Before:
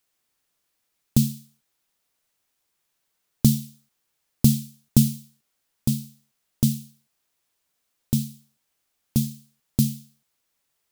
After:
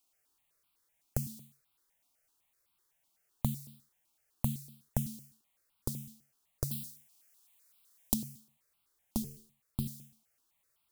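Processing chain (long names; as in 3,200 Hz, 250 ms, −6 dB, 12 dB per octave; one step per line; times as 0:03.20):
downward compressor 6 to 1, threshold −27 dBFS, peak gain reduction 15.5 dB
0:06.71–0:08.14: high-shelf EQ 2,300 Hz +10.5 dB
0:09.22–0:09.86: amplitude modulation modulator 230 Hz, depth 40%
step-sequenced phaser 7.9 Hz 470–1,800 Hz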